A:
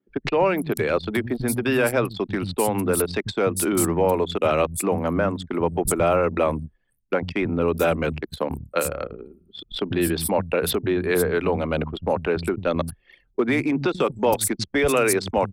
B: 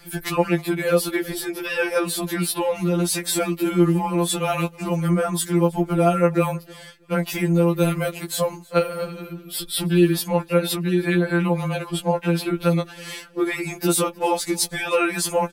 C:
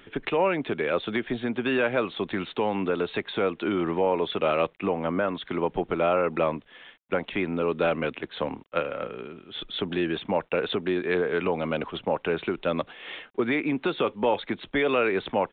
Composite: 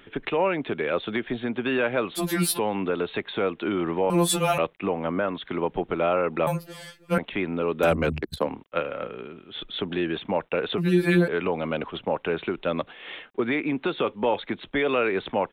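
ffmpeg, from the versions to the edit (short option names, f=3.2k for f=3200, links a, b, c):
-filter_complex "[1:a]asplit=4[a][b][c][d];[2:a]asplit=6[e][f][g][h][i][j];[e]atrim=end=2.19[k];[a]atrim=start=2.15:end=2.6[l];[f]atrim=start=2.56:end=4.102[m];[b]atrim=start=4.098:end=4.582[n];[g]atrim=start=4.578:end=6.472[o];[c]atrim=start=6.468:end=7.182[p];[h]atrim=start=7.178:end=7.832[q];[0:a]atrim=start=7.828:end=8.472[r];[i]atrim=start=8.468:end=10.782[s];[d]atrim=start=10.778:end=11.282[t];[j]atrim=start=11.278[u];[k][l]acrossfade=d=0.04:c1=tri:c2=tri[v];[v][m]acrossfade=d=0.04:c1=tri:c2=tri[w];[w][n]acrossfade=d=0.004:c1=hsin:c2=hsin[x];[x][o]acrossfade=d=0.004:c1=hsin:c2=hsin[y];[y][p]acrossfade=d=0.004:c1=hsin:c2=hsin[z];[z][q]acrossfade=d=0.004:c1=hsin:c2=hsin[aa];[aa][r]acrossfade=d=0.004:c1=hsin:c2=hsin[ab];[ab][s]acrossfade=d=0.004:c1=hsin:c2=hsin[ac];[ac][t]acrossfade=d=0.004:c1=hsin:c2=hsin[ad];[ad][u]acrossfade=d=0.004:c1=hsin:c2=hsin"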